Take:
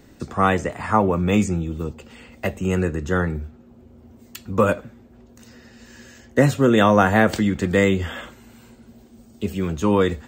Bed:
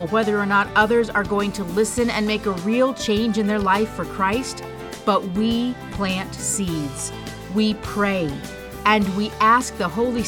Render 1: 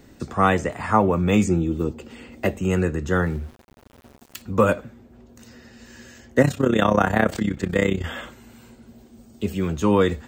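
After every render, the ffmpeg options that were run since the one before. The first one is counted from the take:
-filter_complex "[0:a]asettb=1/sr,asplit=3[a][b][c];[a]atrim=end=1.474[d];[b]atrim=start=1.47:end=2.56,asetpts=PTS-STARTPTS,afade=t=in:d=0.004:c=qsin,afade=t=out:st=1.086:d=0.004:c=qsin,equalizer=f=320:w=1.5:g=7.5[e];[c]atrim=start=2.556[f];[d][e]acrossfade=d=0.004:c1=hsin:c2=qsin[g];[g][f]acrossfade=d=0.004:c1=qsin:c2=hsin,asettb=1/sr,asplit=3[h][i][j];[h]atrim=end=3.134[k];[i]atrim=start=3.13:end=4.42,asetpts=PTS-STARTPTS,afade=t=in:d=0.004:c=qsin,afade=t=out:st=1.286:d=0.004:c=qsin,aeval=exprs='val(0)*gte(abs(val(0)),0.00708)':c=same[l];[j]atrim=start=4.416[m];[k][l]acrossfade=d=0.004:c1=hsin:c2=qsin[n];[n][m]acrossfade=d=0.004:c1=qsin:c2=hsin,asettb=1/sr,asplit=3[o][p][q];[o]atrim=end=6.424[r];[p]atrim=start=6.42:end=8.05,asetpts=PTS-STARTPTS,afade=t=in:d=0.004:c=qsin,afade=t=out:st=1.626:d=0.004:c=qsin,tremolo=f=32:d=0.824[s];[q]atrim=start=8.046[t];[r][s]acrossfade=d=0.004:c1=hsin:c2=qsin[u];[u][t]acrossfade=d=0.004:c1=qsin:c2=hsin"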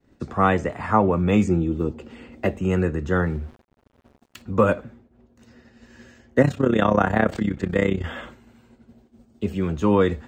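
-af "agate=range=-33dB:threshold=-41dB:ratio=3:detection=peak,lowpass=f=2.6k:p=1"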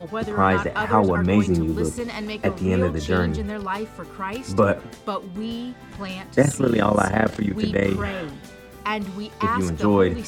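-filter_complex "[1:a]volume=-9dB[a];[0:a][a]amix=inputs=2:normalize=0"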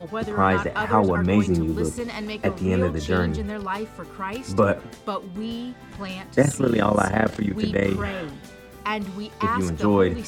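-af "volume=-1dB"

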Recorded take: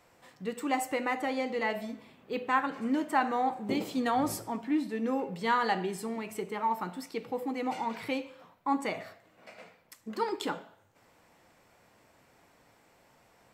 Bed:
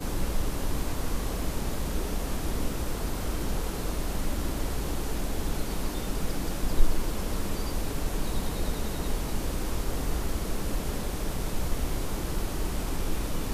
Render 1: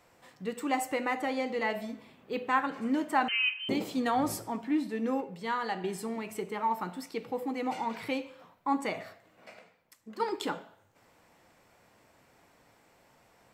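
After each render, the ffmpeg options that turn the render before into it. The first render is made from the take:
-filter_complex "[0:a]asettb=1/sr,asplit=3[a][b][c];[a]atrim=end=3.284[d];[b]atrim=start=3.28:end=3.69,asetpts=PTS-STARTPTS,afade=t=in:d=0.004:c=qsin,afade=t=out:st=0.406:d=0.004:c=qsin,lowpass=f=2.8k:t=q:w=0.5098,lowpass=f=2.8k:t=q:w=0.6013,lowpass=f=2.8k:t=q:w=0.9,lowpass=f=2.8k:t=q:w=2.563,afreqshift=-3300[e];[c]atrim=start=3.686[f];[d][e]acrossfade=d=0.004:c1=hsin:c2=qsin[g];[g][f]acrossfade=d=0.004:c1=qsin:c2=hsin,asplit=5[h][i][j][k][l];[h]atrim=end=5.212[m];[i]atrim=start=5.208:end=5.842,asetpts=PTS-STARTPTS,volume=-5dB[n];[j]atrim=start=5.838:end=9.592[o];[k]atrim=start=9.588:end=10.202,asetpts=PTS-STARTPTS,volume=-6.5dB[p];[l]atrim=start=10.198[q];[m][n]acrossfade=d=0.004:c1=hsin:c2=hsin[r];[r][o]acrossfade=d=0.004:c1=hsin:c2=hsin[s];[s][p]acrossfade=d=0.004:c1=hsin:c2=hsin[t];[t][q]acrossfade=d=0.004:c1=hsin:c2=hsin"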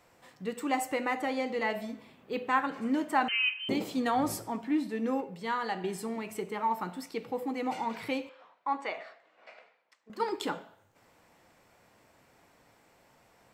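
-filter_complex "[0:a]asettb=1/sr,asplit=3[a][b][c];[a]atrim=end=8.294[d];[b]atrim=start=8.29:end=10.1,asetpts=PTS-STARTPTS,afade=t=in:d=0.004:c=qsin,afade=t=out:st=1.806:d=0.004:c=qsin,highpass=520,lowpass=4k[e];[c]atrim=start=10.096[f];[d][e]acrossfade=d=0.004:c1=hsin:c2=qsin[g];[g][f]acrossfade=d=0.004:c1=qsin:c2=hsin"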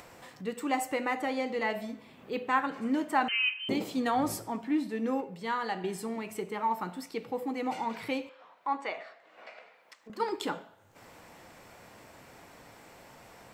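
-af "acompressor=mode=upward:threshold=-42dB:ratio=2.5"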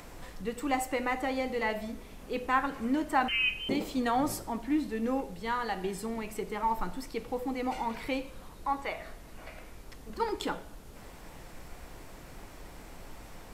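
-filter_complex "[1:a]volume=-19dB[a];[0:a][a]amix=inputs=2:normalize=0"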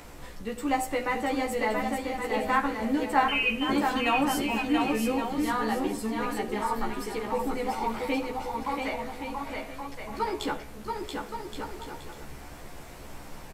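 -filter_complex "[0:a]asplit=2[a][b];[b]adelay=14,volume=-2dB[c];[a][c]amix=inputs=2:normalize=0,aecho=1:1:680|1122|1409|1596|1717:0.631|0.398|0.251|0.158|0.1"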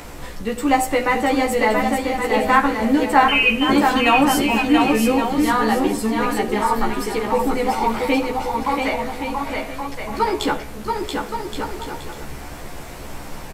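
-af "volume=10dB,alimiter=limit=-2dB:level=0:latency=1"

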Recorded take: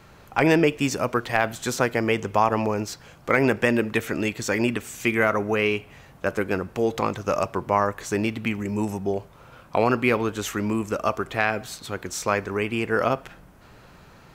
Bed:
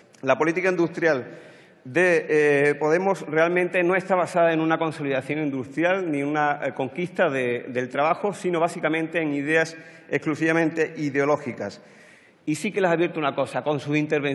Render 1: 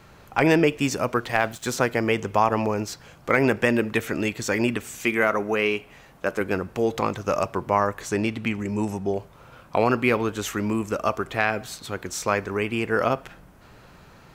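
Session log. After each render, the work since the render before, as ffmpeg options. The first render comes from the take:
-filter_complex "[0:a]asettb=1/sr,asplit=3[a][b][c];[a]atrim=end=1.294[d];[b]atrim=start=1.29:end=1.73,asetpts=PTS-STARTPTS,afade=t=in:d=0.004:c=qsin,afade=t=out:st=0.436:d=0.004:c=qsin,aeval=exprs='sgn(val(0))*max(abs(val(0))-0.00501,0)':c=same[e];[c]atrim=start=1.726[f];[d][e]acrossfade=d=0.004:c1=hsin:c2=qsin[g];[g][f]acrossfade=d=0.004:c1=qsin:c2=hsin,asettb=1/sr,asplit=3[h][i][j];[h]atrim=end=4.984[k];[i]atrim=start=4.98:end=6.41,asetpts=PTS-STARTPTS,afade=t=in:d=0.004:c=qsin,afade=t=out:st=1.426:d=0.004:c=qsin,equalizer=f=93:t=o:w=1.3:g=-9[l];[j]atrim=start=6.406[m];[k][l]acrossfade=d=0.004:c1=hsin:c2=qsin[n];[n][m]acrossfade=d=0.004:c1=qsin:c2=hsin,asettb=1/sr,asplit=3[o][p][q];[o]atrim=end=8.094[r];[p]atrim=start=8.09:end=9.14,asetpts=PTS-STARTPTS,afade=t=in:d=0.004:c=qsin,afade=t=out:st=1.046:d=0.004:c=qsin,lowpass=11k[s];[q]atrim=start=9.136[t];[r][s]acrossfade=d=0.004:c1=hsin:c2=qsin[u];[u][t]acrossfade=d=0.004:c1=qsin:c2=hsin"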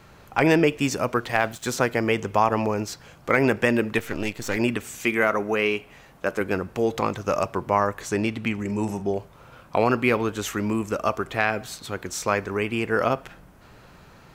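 -filter_complex "[0:a]asettb=1/sr,asplit=3[a][b][c];[a]atrim=end=3.984[d];[b]atrim=start=3.98:end=4.57,asetpts=PTS-STARTPTS,afade=t=in:d=0.004:c=qsin,afade=t=out:st=0.586:d=0.004:c=qsin,aeval=exprs='if(lt(val(0),0),0.251*val(0),val(0))':c=same[e];[c]atrim=start=4.566[f];[d][e]acrossfade=d=0.004:c1=hsin:c2=qsin[g];[g][f]acrossfade=d=0.004:c1=qsin:c2=hsin,asettb=1/sr,asplit=3[h][i][j];[h]atrim=end=8.644[k];[i]atrim=start=8.64:end=9.1,asetpts=PTS-STARTPTS,afade=t=in:d=0.004:c=qsin,afade=t=out:st=0.456:d=0.004:c=qsin,asplit=2[l][m];[m]adelay=45,volume=-12dB[n];[l][n]amix=inputs=2:normalize=0,atrim=end_sample=20286[o];[j]atrim=start=9.096[p];[k][o]acrossfade=d=0.004:c1=hsin:c2=qsin[q];[q][p]acrossfade=d=0.004:c1=qsin:c2=hsin"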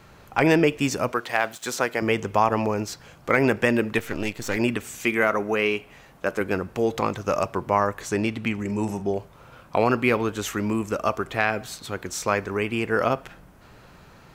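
-filter_complex "[0:a]asettb=1/sr,asplit=3[a][b][c];[a]atrim=end=1.124[d];[b]atrim=start=1.12:end=2.02,asetpts=PTS-STARTPTS,afade=t=in:d=0.004:c=qsin,afade=t=out:st=0.896:d=0.004:c=qsin,highpass=f=420:p=1[e];[c]atrim=start=2.016[f];[d][e]acrossfade=d=0.004:c1=hsin:c2=qsin[g];[g][f]acrossfade=d=0.004:c1=qsin:c2=hsin"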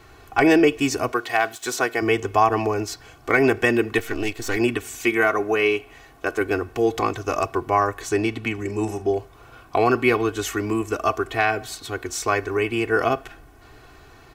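-af "aecho=1:1:2.7:0.84"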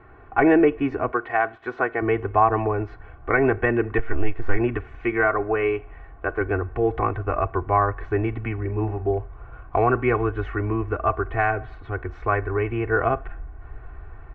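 -af "lowpass=f=1.9k:w=0.5412,lowpass=f=1.9k:w=1.3066,asubboost=boost=7.5:cutoff=73"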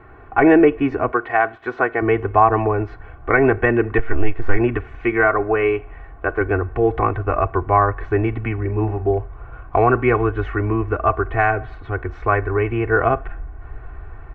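-af "volume=4.5dB,alimiter=limit=-2dB:level=0:latency=1"

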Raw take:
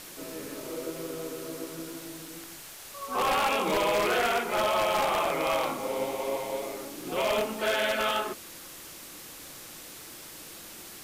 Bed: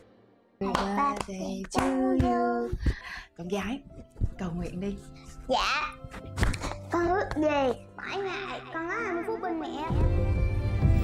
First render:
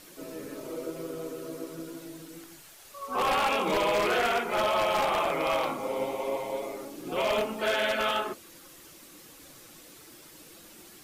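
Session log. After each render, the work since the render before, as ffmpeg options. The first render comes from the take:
-af "afftdn=nr=8:nf=-45"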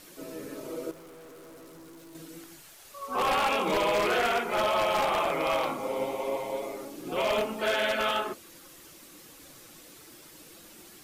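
-filter_complex "[0:a]asettb=1/sr,asplit=3[a][b][c];[a]atrim=end=0.914[d];[b]atrim=start=0.91:end=2.15,asetpts=PTS-STARTPTS,afade=t=in:d=0.004:c=qsin,afade=t=out:st=1.236:d=0.004:c=qsin,aeval=exprs='(tanh(224*val(0)+0.15)-tanh(0.15))/224':c=same[e];[c]atrim=start=2.146[f];[d][e]acrossfade=d=0.004:c1=hsin:c2=qsin[g];[g][f]acrossfade=d=0.004:c1=qsin:c2=hsin"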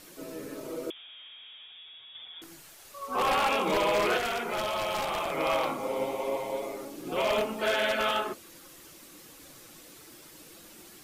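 -filter_complex "[0:a]asettb=1/sr,asplit=3[a][b][c];[a]atrim=end=0.904[d];[b]atrim=start=0.9:end=2.42,asetpts=PTS-STARTPTS,afade=t=in:d=0.004:c=qsin,afade=t=out:st=1.516:d=0.004:c=qsin,lowpass=f=3.1k:t=q:w=0.5098,lowpass=f=3.1k:t=q:w=0.6013,lowpass=f=3.1k:t=q:w=0.9,lowpass=f=3.1k:t=q:w=2.563,afreqshift=-3700[e];[c]atrim=start=2.416[f];[d][e]acrossfade=d=0.004:c1=hsin:c2=qsin[g];[g][f]acrossfade=d=0.004:c1=qsin:c2=hsin,asettb=1/sr,asplit=3[h][i][j];[h]atrim=end=4.174[k];[i]atrim=start=4.17:end=5.38,asetpts=PTS-STARTPTS,afade=t=in:d=0.004:c=qsin,afade=t=out:st=1.206:d=0.004:c=qsin,acrossover=split=170|3000[l][m][n];[m]acompressor=threshold=-28dB:ratio=6:attack=3.2:release=140:knee=2.83:detection=peak[o];[l][o][n]amix=inputs=3:normalize=0[p];[j]atrim=start=5.376[q];[k][p]acrossfade=d=0.004:c1=hsin:c2=qsin[r];[r][q]acrossfade=d=0.004:c1=qsin:c2=hsin"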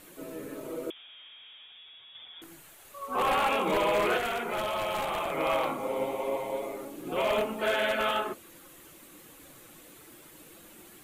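-af "equalizer=f=5.2k:t=o:w=0.68:g=-10"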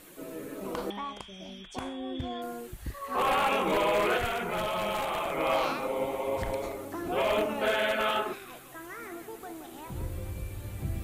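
-filter_complex "[1:a]volume=-11dB[a];[0:a][a]amix=inputs=2:normalize=0"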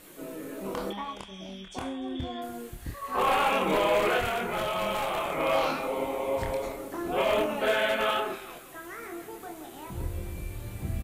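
-filter_complex "[0:a]asplit=2[a][b];[b]adelay=26,volume=-4.5dB[c];[a][c]amix=inputs=2:normalize=0,aecho=1:1:295:0.0841"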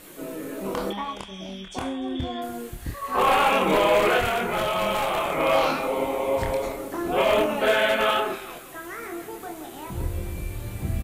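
-af "volume=5dB"

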